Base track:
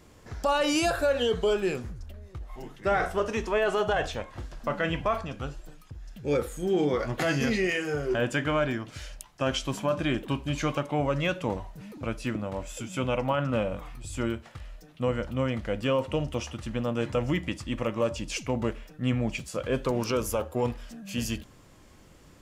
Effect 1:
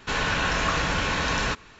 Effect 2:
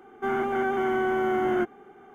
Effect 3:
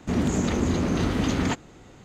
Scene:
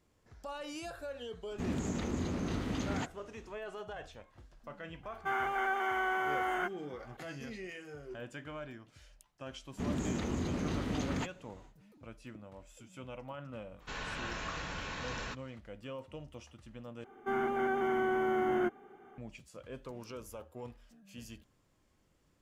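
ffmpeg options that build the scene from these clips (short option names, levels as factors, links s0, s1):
-filter_complex "[3:a]asplit=2[s0][s1];[2:a]asplit=2[s2][s3];[0:a]volume=0.126[s4];[s2]highpass=810[s5];[s1]aeval=exprs='clip(val(0),-1,0.126)':c=same[s6];[s4]asplit=2[s7][s8];[s7]atrim=end=17.044[s9];[s3]atrim=end=2.14,asetpts=PTS-STARTPTS,volume=0.501[s10];[s8]atrim=start=19.176[s11];[s0]atrim=end=2.04,asetpts=PTS-STARTPTS,volume=0.266,afade=t=in:d=0.004:c=hsin,afade=t=out:st=2.036:d=0.004:c=hsin,adelay=1510[s12];[s5]atrim=end=2.14,asetpts=PTS-STARTPTS,volume=0.891,afade=t=in:d=0.004:c=hsin,afade=t=out:st=2.136:d=0.004:c=hsin,adelay=5030[s13];[s6]atrim=end=2.04,asetpts=PTS-STARTPTS,volume=0.282,afade=t=in:d=0.1,afade=t=out:st=1.94:d=0.1,adelay=9710[s14];[1:a]atrim=end=1.79,asetpts=PTS-STARTPTS,volume=0.168,afade=t=in:d=0.004:c=hsin,afade=t=out:st=1.786:d=0.004:c=hsin,adelay=608580S[s15];[s9][s10]acrossfade=d=0.004:c1=hsin:c2=hsin[s16];[s16][s11]acrossfade=d=0.004:c1=hsin:c2=hsin[s17];[s17][s12][s13][s14][s15]amix=inputs=5:normalize=0"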